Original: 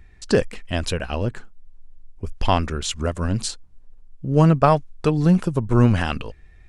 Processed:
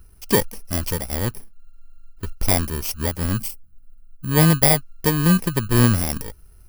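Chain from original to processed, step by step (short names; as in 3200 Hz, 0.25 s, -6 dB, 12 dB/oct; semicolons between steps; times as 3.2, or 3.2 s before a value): FFT order left unsorted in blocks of 32 samples; spectral gain 3.38–4.31, 300–7300 Hz -8 dB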